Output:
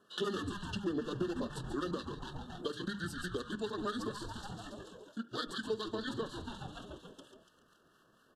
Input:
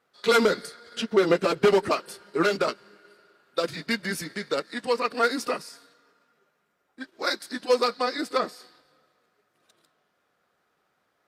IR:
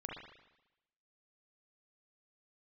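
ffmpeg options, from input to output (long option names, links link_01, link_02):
-filter_complex "[0:a]equalizer=frequency=250:width_type=o:width=1:gain=6,equalizer=frequency=1000:width_type=o:width=1:gain=-9,equalizer=frequency=2000:width_type=o:width=1:gain=5,asplit=9[link_01][link_02][link_03][link_04][link_05][link_06][link_07][link_08][link_09];[link_02]adelay=191,afreqshift=-120,volume=-9.5dB[link_10];[link_03]adelay=382,afreqshift=-240,volume=-13.8dB[link_11];[link_04]adelay=573,afreqshift=-360,volume=-18.1dB[link_12];[link_05]adelay=764,afreqshift=-480,volume=-22.4dB[link_13];[link_06]adelay=955,afreqshift=-600,volume=-26.7dB[link_14];[link_07]adelay=1146,afreqshift=-720,volume=-31dB[link_15];[link_08]adelay=1337,afreqshift=-840,volume=-35.3dB[link_16];[link_09]adelay=1528,afreqshift=-960,volume=-39.6dB[link_17];[link_01][link_10][link_11][link_12][link_13][link_14][link_15][link_16][link_17]amix=inputs=9:normalize=0,asetrate=59535,aresample=44100,asuperstop=centerf=3400:order=20:qfactor=2.5,equalizer=frequency=78:width_type=o:width=1.9:gain=-4,asetrate=28595,aresample=44100,atempo=1.54221,asplit=2[link_18][link_19];[1:a]atrim=start_sample=2205,atrim=end_sample=3087[link_20];[link_19][link_20]afir=irnorm=-1:irlink=0,volume=-9.5dB[link_21];[link_18][link_21]amix=inputs=2:normalize=0,acrossover=split=970[link_22][link_23];[link_22]aeval=exprs='val(0)*(1-0.5/2+0.5/2*cos(2*PI*4.2*n/s))':channel_layout=same[link_24];[link_23]aeval=exprs='val(0)*(1-0.5/2-0.5/2*cos(2*PI*4.2*n/s))':channel_layout=same[link_25];[link_24][link_25]amix=inputs=2:normalize=0,acompressor=threshold=-47dB:ratio=3,bandreject=frequency=50:width_type=h:width=6,bandreject=frequency=100:width_type=h:width=6,bandreject=frequency=150:width_type=h:width=6,bandreject=frequency=200:width_type=h:width=6,volume=6dB"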